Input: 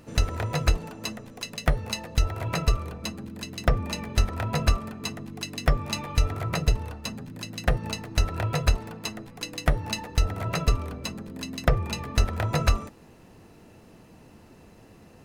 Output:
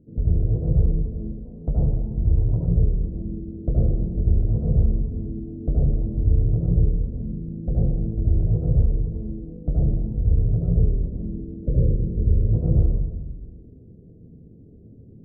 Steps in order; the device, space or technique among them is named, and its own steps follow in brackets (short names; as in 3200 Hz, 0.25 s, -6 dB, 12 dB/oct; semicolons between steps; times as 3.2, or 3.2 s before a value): Wiener smoothing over 41 samples; 11.6–12.42 spectral repair 620–1400 Hz before; next room (LPF 430 Hz 24 dB/oct; reverb RT60 1.1 s, pre-delay 68 ms, DRR -6 dB); 1.45–2.65 bell 940 Hz +10 dB 0.51 oct; gain -1.5 dB